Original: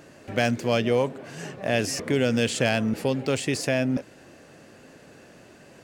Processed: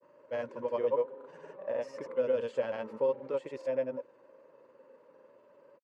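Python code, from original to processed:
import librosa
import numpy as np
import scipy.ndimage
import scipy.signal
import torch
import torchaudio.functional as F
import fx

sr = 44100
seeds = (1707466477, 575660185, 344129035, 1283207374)

y = fx.spec_quant(x, sr, step_db=15)
y = fx.double_bandpass(y, sr, hz=720.0, octaves=0.81)
y = fx.granulator(y, sr, seeds[0], grain_ms=100.0, per_s=20.0, spray_ms=100.0, spread_st=0)
y = y * 10.0 ** (1.5 / 20.0)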